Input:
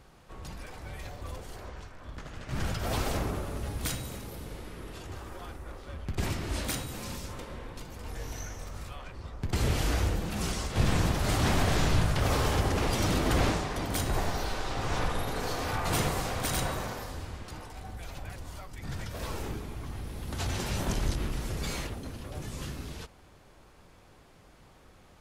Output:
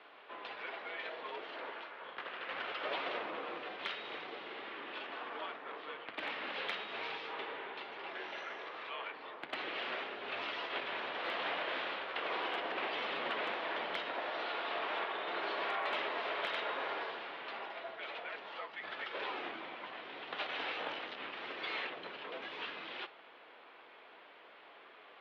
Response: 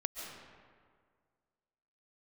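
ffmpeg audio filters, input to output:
-af "equalizer=frequency=2700:width_type=o:width=2.6:gain=6.5,acompressor=threshold=-33dB:ratio=4,flanger=delay=7.1:depth=4.9:regen=85:speed=0.69:shape=triangular,highpass=frequency=480:width_type=q:width=0.5412,highpass=frequency=480:width_type=q:width=1.307,lowpass=frequency=3600:width_type=q:width=0.5176,lowpass=frequency=3600:width_type=q:width=0.7071,lowpass=frequency=3600:width_type=q:width=1.932,afreqshift=-91,asoftclip=type=hard:threshold=-32dB,volume=5.5dB"

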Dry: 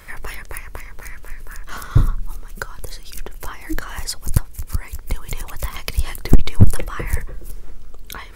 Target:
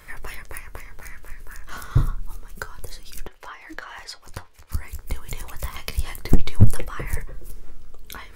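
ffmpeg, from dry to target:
ffmpeg -i in.wav -filter_complex "[0:a]flanger=delay=6.5:depth=9.9:regen=65:speed=0.28:shape=triangular,asettb=1/sr,asplit=3[link_01][link_02][link_03];[link_01]atrim=end=3.274[link_04];[link_02]atrim=start=3.27:end=4.72,asetpts=PTS-STARTPTS,afade=type=in:duration=0.004:curve=qsin,afade=type=out:start_time=1.446:duration=0.004:curve=qsin,acrossover=split=400 5200:gain=0.141 1 0.141[link_05][link_06][link_07];[link_05][link_06][link_07]amix=inputs=3:normalize=0[link_08];[link_03]atrim=start=4.716[link_09];[link_04][link_08]acrossfade=duration=0.004:curve1=hsin:curve2=qsin[link_10];[link_10][link_09]acrossfade=duration=0.004:curve1=qsin:curve2=hsin" out.wav

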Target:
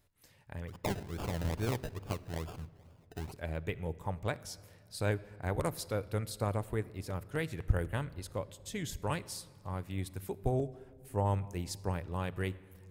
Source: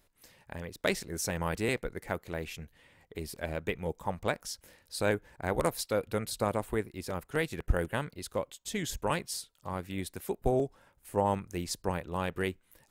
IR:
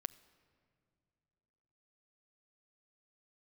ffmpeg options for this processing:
-filter_complex "[0:a]asplit=3[link_01][link_02][link_03];[link_01]afade=type=out:start_time=0.67:duration=0.02[link_04];[link_02]acrusher=samples=31:mix=1:aa=0.000001:lfo=1:lforange=18.6:lforate=2.3,afade=type=in:start_time=0.67:duration=0.02,afade=type=out:start_time=3.31:duration=0.02[link_05];[link_03]afade=type=in:start_time=3.31:duration=0.02[link_06];[link_04][link_05][link_06]amix=inputs=3:normalize=0,equalizer=frequency=98:width=1.4:gain=11[link_07];[1:a]atrim=start_sample=2205[link_08];[link_07][link_08]afir=irnorm=-1:irlink=0,volume=-3dB"

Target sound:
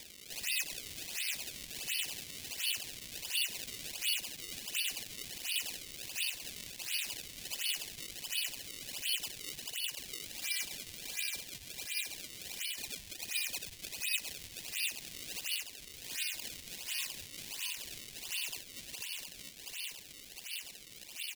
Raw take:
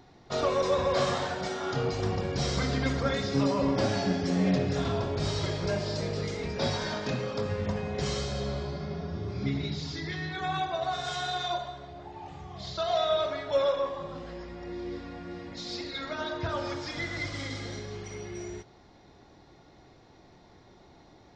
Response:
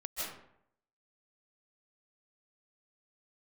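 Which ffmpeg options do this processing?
-filter_complex "[0:a]highpass=50,asplit=2[link_01][link_02];[link_02]aecho=0:1:446|892|1338|1784|2230|2676|3122:0.531|0.297|0.166|0.0932|0.0522|0.0292|0.0164[link_03];[link_01][link_03]amix=inputs=2:normalize=0,flanger=delay=15:depth=6.5:speed=2.2,acompressor=mode=upward:threshold=-44dB:ratio=2.5,highshelf=frequency=2300:gain=8.5,acompressor=threshold=-41dB:ratio=6,lowpass=frequency=2600:width_type=q:width=0.5098,lowpass=frequency=2600:width_type=q:width=0.6013,lowpass=frequency=2600:width_type=q:width=0.9,lowpass=frequency=2600:width_type=q:width=2.563,afreqshift=-3100,asoftclip=type=hard:threshold=-39dB,flanger=delay=8.7:depth=6:regen=-53:speed=0.23:shape=sinusoidal,acrusher=samples=30:mix=1:aa=0.000001:lfo=1:lforange=48:lforate=1.4,aexciter=amount=15.3:drive=3.1:freq=2000,volume=-8dB"

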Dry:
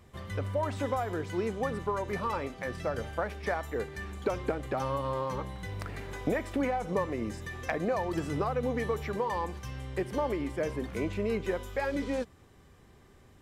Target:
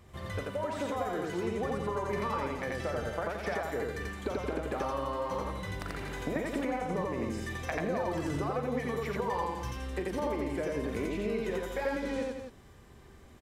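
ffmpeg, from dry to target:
ffmpeg -i in.wav -filter_complex "[0:a]asplit=2[link_01][link_02];[link_02]aecho=0:1:172:0.266[link_03];[link_01][link_03]amix=inputs=2:normalize=0,acompressor=threshold=-31dB:ratio=6,asplit=2[link_04][link_05];[link_05]aecho=0:1:43.73|87.46:0.282|0.891[link_06];[link_04][link_06]amix=inputs=2:normalize=0" out.wav

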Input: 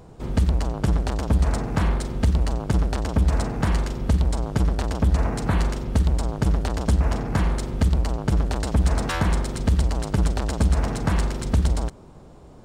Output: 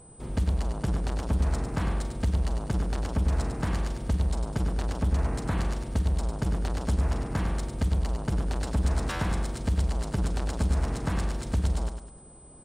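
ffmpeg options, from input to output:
ffmpeg -i in.wav -af "aecho=1:1:101|202|303|404:0.422|0.16|0.0609|0.0231,aeval=exprs='val(0)+0.00562*sin(2*PI*8100*n/s)':channel_layout=same,volume=-7dB" out.wav

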